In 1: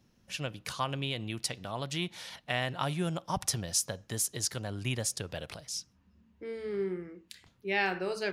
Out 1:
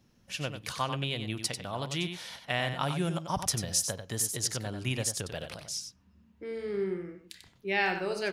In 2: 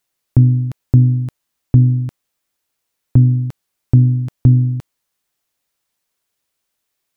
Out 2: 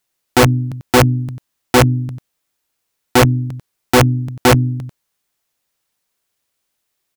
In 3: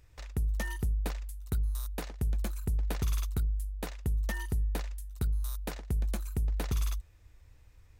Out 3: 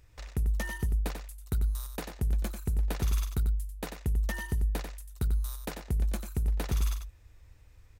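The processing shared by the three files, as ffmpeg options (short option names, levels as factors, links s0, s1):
-af "aecho=1:1:93:0.398,aeval=exprs='(mod(1.88*val(0)+1,2)-1)/1.88':c=same,volume=1.12"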